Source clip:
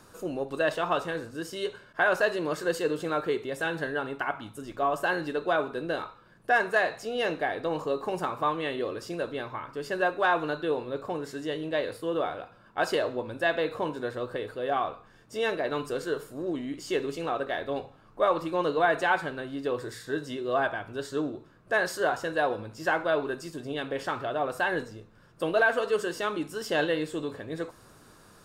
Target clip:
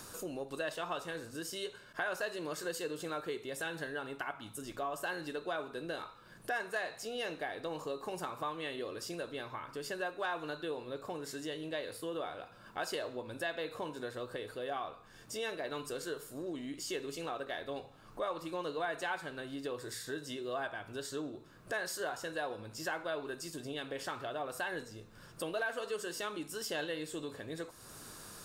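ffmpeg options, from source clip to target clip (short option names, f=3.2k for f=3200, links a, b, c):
-af "highshelf=f=3.5k:g=11,acompressor=threshold=-50dB:ratio=2,volume=2.5dB"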